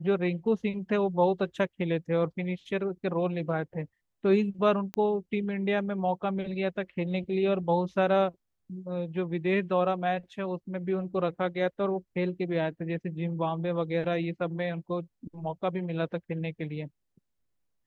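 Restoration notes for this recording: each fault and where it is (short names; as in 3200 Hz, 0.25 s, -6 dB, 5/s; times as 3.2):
4.94 pop -18 dBFS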